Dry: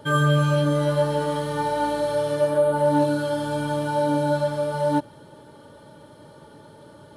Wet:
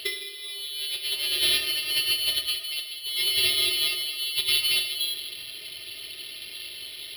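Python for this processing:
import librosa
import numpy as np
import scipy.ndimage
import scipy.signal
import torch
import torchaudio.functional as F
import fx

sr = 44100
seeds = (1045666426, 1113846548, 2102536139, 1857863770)

y = fx.hum_notches(x, sr, base_hz=60, count=5)
y = fx.over_compress(y, sr, threshold_db=-28.0, ratio=-0.5)
y = fx.rev_plate(y, sr, seeds[0], rt60_s=1.4, hf_ratio=0.9, predelay_ms=0, drr_db=2.5)
y = fx.freq_invert(y, sr, carrier_hz=3600)
y = np.repeat(y[::6], 6)[:len(y)]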